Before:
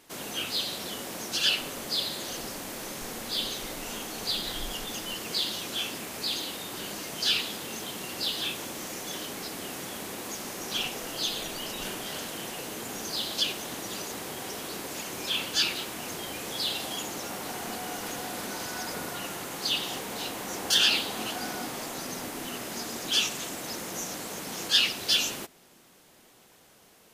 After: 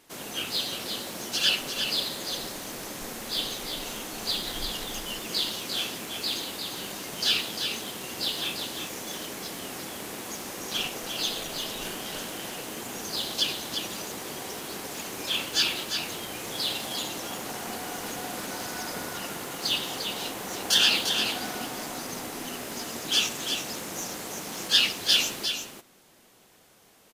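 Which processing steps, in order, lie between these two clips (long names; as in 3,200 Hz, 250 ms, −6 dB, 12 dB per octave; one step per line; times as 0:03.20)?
in parallel at −6.5 dB: dead-zone distortion −35.5 dBFS
on the sum: single-tap delay 349 ms −6.5 dB
level −1.5 dB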